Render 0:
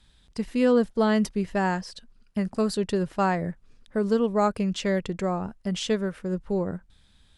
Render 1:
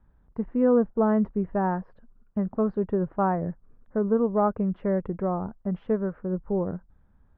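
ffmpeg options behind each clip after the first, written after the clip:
-af "lowpass=f=1.3k:w=0.5412,lowpass=f=1.3k:w=1.3066"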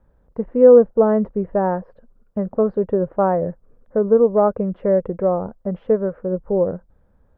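-af "equalizer=f=520:t=o:w=0.64:g=12.5,volume=2dB"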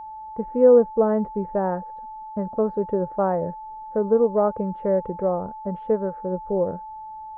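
-af "aeval=exprs='val(0)+0.0316*sin(2*PI*870*n/s)':c=same,volume=-4.5dB"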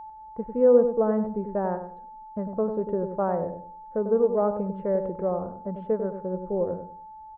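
-filter_complex "[0:a]asplit=2[a][b];[b]adelay=97,lowpass=f=950:p=1,volume=-6.5dB,asplit=2[c][d];[d]adelay=97,lowpass=f=950:p=1,volume=0.29,asplit=2[e][f];[f]adelay=97,lowpass=f=950:p=1,volume=0.29,asplit=2[g][h];[h]adelay=97,lowpass=f=950:p=1,volume=0.29[i];[a][c][e][g][i]amix=inputs=5:normalize=0,volume=-4dB"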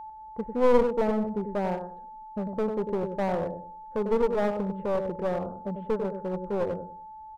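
-af "aeval=exprs='clip(val(0),-1,0.0447)':c=same"

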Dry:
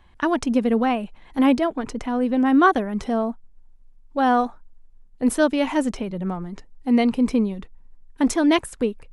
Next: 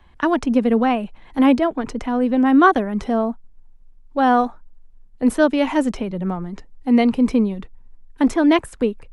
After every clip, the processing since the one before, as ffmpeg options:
-filter_complex "[0:a]highshelf=f=4.9k:g=-5,acrossover=split=120|490|2800[a][b][c][d];[d]alimiter=level_in=2dB:limit=-24dB:level=0:latency=1:release=280,volume=-2dB[e];[a][b][c][e]amix=inputs=4:normalize=0,volume=3dB"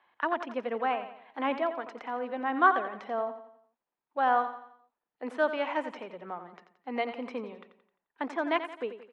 -filter_complex "[0:a]highpass=640,lowpass=2.6k,asplit=2[a][b];[b]aecho=0:1:87|174|261|348|435:0.282|0.124|0.0546|0.024|0.0106[c];[a][c]amix=inputs=2:normalize=0,volume=-6.5dB"

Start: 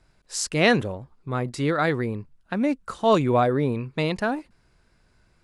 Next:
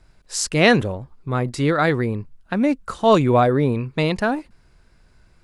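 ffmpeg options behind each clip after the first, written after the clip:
-af "lowshelf=f=65:g=7,volume=4dB"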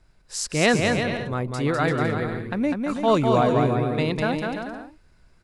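-af "aecho=1:1:200|340|438|506.6|554.6:0.631|0.398|0.251|0.158|0.1,volume=-5dB"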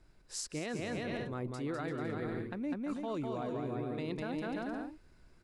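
-af "alimiter=limit=-14.5dB:level=0:latency=1:release=127,equalizer=f=320:w=1.7:g=6.5,areverse,acompressor=threshold=-30dB:ratio=6,areverse,volume=-5dB"

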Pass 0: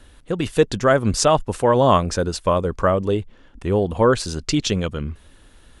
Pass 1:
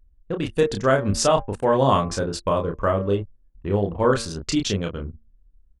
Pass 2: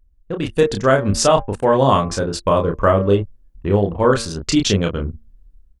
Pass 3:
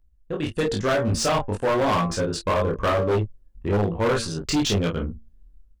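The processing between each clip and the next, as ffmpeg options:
-filter_complex "[0:a]asplit=2[a][b];[b]adelay=30,volume=-4dB[c];[a][c]amix=inputs=2:normalize=0,bandreject=f=114.3:t=h:w=4,bandreject=f=228.6:t=h:w=4,bandreject=f=342.9:t=h:w=4,bandreject=f=457.2:t=h:w=4,bandreject=f=571.5:t=h:w=4,bandreject=f=685.8:t=h:w=4,bandreject=f=800.1:t=h:w=4,bandreject=f=914.4:t=h:w=4,bandreject=f=1.0287k:t=h:w=4,bandreject=f=1.143k:t=h:w=4,bandreject=f=1.2573k:t=h:w=4,bandreject=f=1.3716k:t=h:w=4,bandreject=f=1.4859k:t=h:w=4,bandreject=f=1.6002k:t=h:w=4,bandreject=f=1.7145k:t=h:w=4,bandreject=f=1.8288k:t=h:w=4,bandreject=f=1.9431k:t=h:w=4,bandreject=f=2.0574k:t=h:w=4,bandreject=f=2.1717k:t=h:w=4,bandreject=f=2.286k:t=h:w=4,bandreject=f=2.4003k:t=h:w=4,bandreject=f=2.5146k:t=h:w=4,anlmdn=63.1,volume=-4dB"
-af "dynaudnorm=f=160:g=5:m=9dB"
-filter_complex "[0:a]acrossover=split=720|4800[a][b][c];[c]asoftclip=type=tanh:threshold=-23dB[d];[a][b][d]amix=inputs=3:normalize=0,flanger=delay=17.5:depth=3.2:speed=0.98,volume=18dB,asoftclip=hard,volume=-18dB"

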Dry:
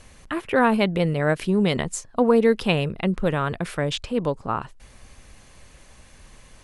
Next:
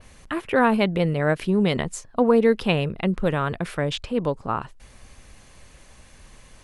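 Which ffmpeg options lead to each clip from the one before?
-af "adynamicequalizer=threshold=0.00447:dfrequency=7900:dqfactor=0.71:tfrequency=7900:tqfactor=0.71:attack=5:release=100:ratio=0.375:range=2.5:mode=cutabove:tftype=bell"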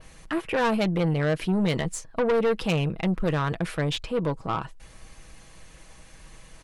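-af "aecho=1:1:6.2:0.43,aeval=exprs='(tanh(8.91*val(0)+0.25)-tanh(0.25))/8.91':c=same"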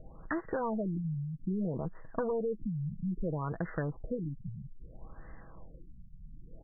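-af "acompressor=threshold=-31dB:ratio=5,acrusher=bits=6:mode=log:mix=0:aa=0.000001,afftfilt=real='re*lt(b*sr/1024,210*pow(2100/210,0.5+0.5*sin(2*PI*0.61*pts/sr)))':imag='im*lt(b*sr/1024,210*pow(2100/210,0.5+0.5*sin(2*PI*0.61*pts/sr)))':win_size=1024:overlap=0.75"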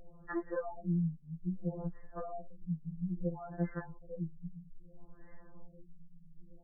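-af "afftfilt=real='re*2.83*eq(mod(b,8),0)':imag='im*2.83*eq(mod(b,8),0)':win_size=2048:overlap=0.75,volume=-2.5dB"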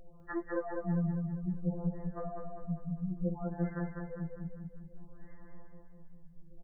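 -af "aecho=1:1:200|400|600|800|1000|1200:0.631|0.315|0.158|0.0789|0.0394|0.0197"

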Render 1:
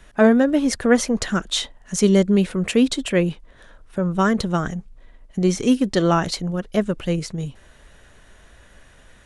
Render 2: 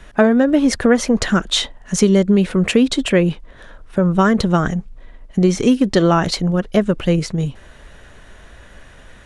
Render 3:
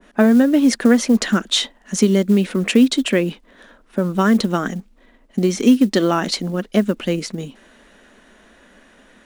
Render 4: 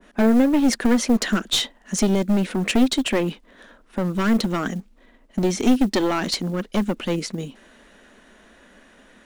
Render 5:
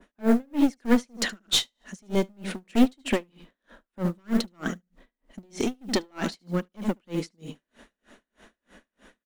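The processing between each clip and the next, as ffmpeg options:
-af "highshelf=f=6k:g=-7.5,acompressor=threshold=-17dB:ratio=5,volume=7.5dB"
-af "lowshelf=f=160:t=q:w=3:g=-12,acrusher=bits=9:mode=log:mix=0:aa=0.000001,adynamicequalizer=threshold=0.0316:dfrequency=1500:dqfactor=0.7:tfrequency=1500:tqfactor=0.7:attack=5:release=100:ratio=0.375:range=2.5:mode=boostabove:tftype=highshelf,volume=-5dB"
-af "aeval=exprs='clip(val(0),-1,0.141)':c=same,volume=-1.5dB"
-af "aecho=1:1:74|148|222:0.266|0.0532|0.0106,aeval=exprs='val(0)*pow(10,-39*(0.5-0.5*cos(2*PI*3.2*n/s))/20)':c=same"

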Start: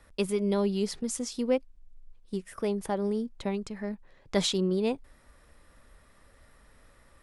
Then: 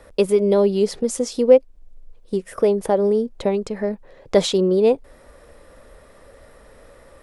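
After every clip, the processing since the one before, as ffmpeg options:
-filter_complex "[0:a]asplit=2[a][b];[b]acompressor=threshold=-35dB:ratio=6,volume=-0.5dB[c];[a][c]amix=inputs=2:normalize=0,equalizer=f=510:t=o:w=1.1:g=12,volume=2dB"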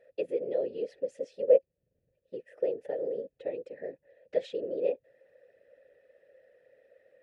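-filter_complex "[0:a]afftfilt=real='hypot(re,im)*cos(2*PI*random(0))':imag='hypot(re,im)*sin(2*PI*random(1))':win_size=512:overlap=0.75,asplit=3[a][b][c];[a]bandpass=f=530:t=q:w=8,volume=0dB[d];[b]bandpass=f=1.84k:t=q:w=8,volume=-6dB[e];[c]bandpass=f=2.48k:t=q:w=8,volume=-9dB[f];[d][e][f]amix=inputs=3:normalize=0"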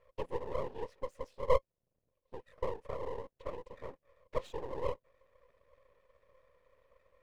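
-af "aeval=exprs='max(val(0),0)':c=same,volume=-2.5dB"

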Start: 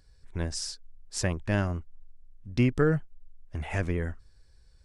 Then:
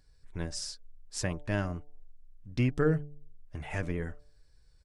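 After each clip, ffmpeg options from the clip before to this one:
-af "aecho=1:1:6.7:0.33,bandreject=f=146.6:t=h:w=4,bandreject=f=293.2:t=h:w=4,bandreject=f=439.8:t=h:w=4,bandreject=f=586.4:t=h:w=4,bandreject=f=733:t=h:w=4,bandreject=f=879.6:t=h:w=4,volume=-4dB"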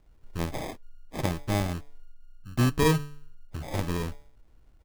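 -af "acrusher=samples=31:mix=1:aa=0.000001,volume=4dB"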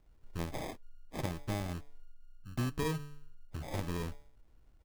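-af "acompressor=threshold=-27dB:ratio=3,volume=-5dB"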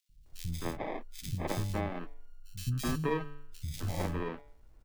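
-filter_complex "[0:a]acrossover=split=190|2900[a][b][c];[a]adelay=90[d];[b]adelay=260[e];[d][e][c]amix=inputs=3:normalize=0,volume=4.5dB"

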